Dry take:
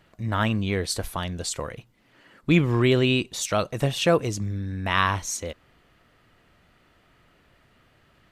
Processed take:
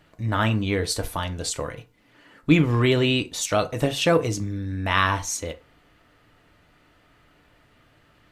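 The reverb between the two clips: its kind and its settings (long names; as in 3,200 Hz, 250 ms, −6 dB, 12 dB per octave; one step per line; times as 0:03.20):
feedback delay network reverb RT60 0.31 s, low-frequency decay 0.8×, high-frequency decay 0.65×, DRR 6.5 dB
level +1 dB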